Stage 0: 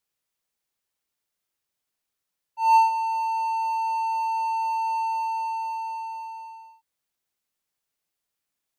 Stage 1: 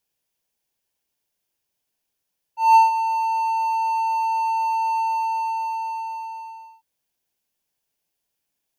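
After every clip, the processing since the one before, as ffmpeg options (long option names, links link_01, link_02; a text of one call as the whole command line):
ffmpeg -i in.wav -af "equalizer=frequency=1250:width_type=o:width=0.33:gain=-10,equalizer=frequency=2000:width_type=o:width=0.33:gain=-5,equalizer=frequency=4000:width_type=o:width=0.33:gain=-4,equalizer=frequency=8000:width_type=o:width=0.33:gain=-4,volume=5dB" out.wav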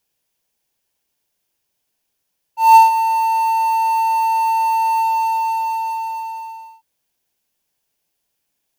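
ffmpeg -i in.wav -af "acrusher=bits=6:mode=log:mix=0:aa=0.000001,volume=5.5dB" out.wav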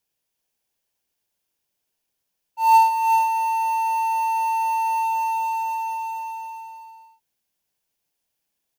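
ffmpeg -i in.wav -af "aecho=1:1:385:0.562,volume=-6dB" out.wav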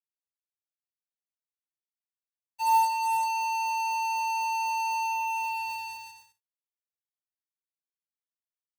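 ffmpeg -i in.wav -af "acrusher=bits=3:mix=0:aa=0.5,volume=-8dB" out.wav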